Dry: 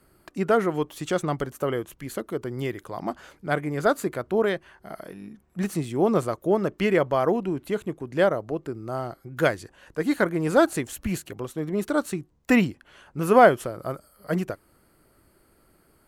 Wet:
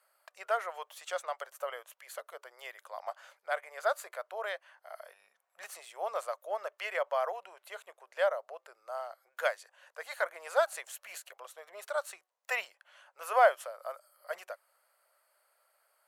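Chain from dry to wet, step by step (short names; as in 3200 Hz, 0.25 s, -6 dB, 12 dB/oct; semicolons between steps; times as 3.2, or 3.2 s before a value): elliptic high-pass 570 Hz, stop band 50 dB; gain -6.5 dB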